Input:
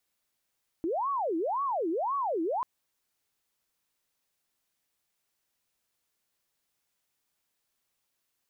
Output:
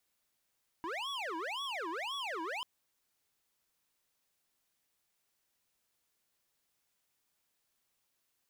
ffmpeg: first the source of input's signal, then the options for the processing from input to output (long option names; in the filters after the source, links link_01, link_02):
-f lavfi -i "aevalsrc='0.0447*sin(2*PI*(724.5*t-405.5/(2*PI*1.9)*sin(2*PI*1.9*t)))':duration=1.79:sample_rate=44100"
-af "aeval=exprs='0.0224*(abs(mod(val(0)/0.0224+3,4)-2)-1)':channel_layout=same"